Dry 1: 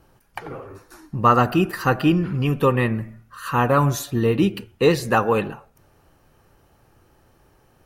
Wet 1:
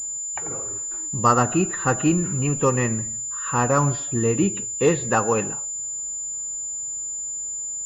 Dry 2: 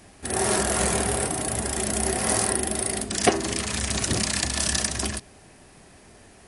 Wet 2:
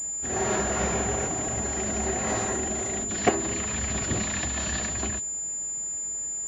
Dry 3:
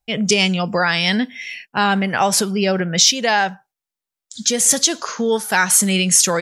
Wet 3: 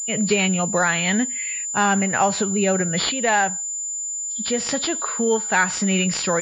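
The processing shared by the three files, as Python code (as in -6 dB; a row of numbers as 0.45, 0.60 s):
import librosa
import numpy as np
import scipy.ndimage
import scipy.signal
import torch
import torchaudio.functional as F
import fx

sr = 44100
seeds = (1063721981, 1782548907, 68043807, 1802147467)

y = fx.freq_compress(x, sr, knee_hz=2800.0, ratio=1.5)
y = fx.pwm(y, sr, carrier_hz=7100.0)
y = y * librosa.db_to_amplitude(-2.0)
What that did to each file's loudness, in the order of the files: -2.5, -3.0, -4.0 LU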